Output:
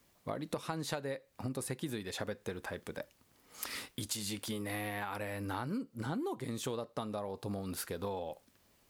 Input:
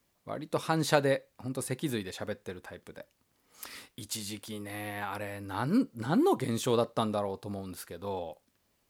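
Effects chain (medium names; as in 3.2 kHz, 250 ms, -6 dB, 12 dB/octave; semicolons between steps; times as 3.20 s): compression 16:1, threshold -39 dBFS, peak gain reduction 21 dB; trim +5 dB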